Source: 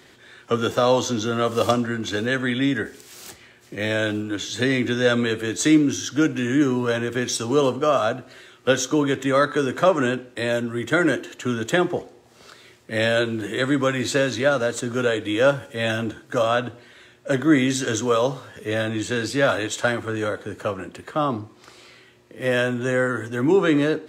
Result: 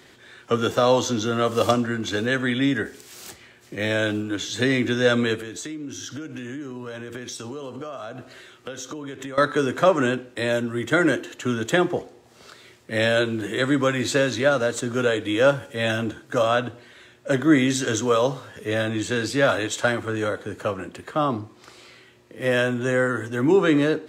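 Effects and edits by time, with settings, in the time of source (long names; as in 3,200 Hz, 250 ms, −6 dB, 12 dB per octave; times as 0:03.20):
0:05.35–0:09.38: downward compressor 16 to 1, threshold −30 dBFS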